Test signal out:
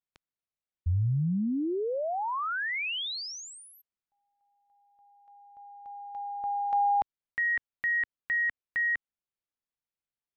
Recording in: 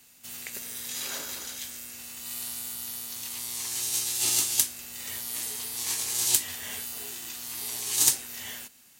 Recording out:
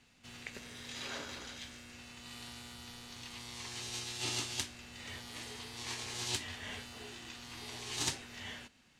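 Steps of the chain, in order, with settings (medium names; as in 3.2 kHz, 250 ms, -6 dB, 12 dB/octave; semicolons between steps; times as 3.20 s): low-pass 3.7 kHz 12 dB/octave; bass shelf 190 Hz +7.5 dB; trim -3 dB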